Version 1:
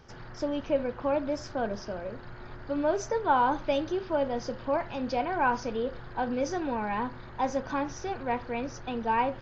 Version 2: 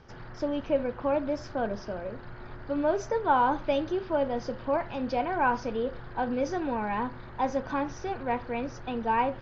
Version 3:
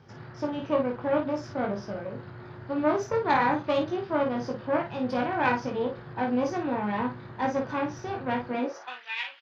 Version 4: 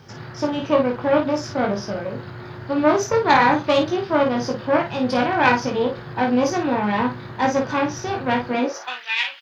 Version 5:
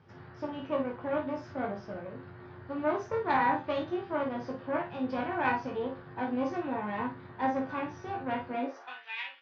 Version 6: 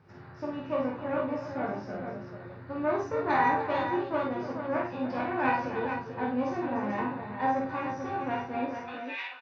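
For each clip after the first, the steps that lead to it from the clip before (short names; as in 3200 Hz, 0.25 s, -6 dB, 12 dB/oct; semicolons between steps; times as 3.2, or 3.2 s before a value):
air absorption 100 m; gain +1 dB
added harmonics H 4 -12 dB, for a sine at -12 dBFS; early reflections 20 ms -3.5 dB, 53 ms -6 dB; high-pass sweep 120 Hz -> 2700 Hz, 8.44–9.07; gain -3 dB
high shelf 4100 Hz +12 dB; gain +7.5 dB
LPF 2500 Hz 12 dB/oct; resonator 88 Hz, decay 0.23 s, harmonics all, mix 80%; gain -6 dB
notch 3200 Hz, Q 7.4; tapped delay 48/299/441 ms -3.5/-11/-6.5 dB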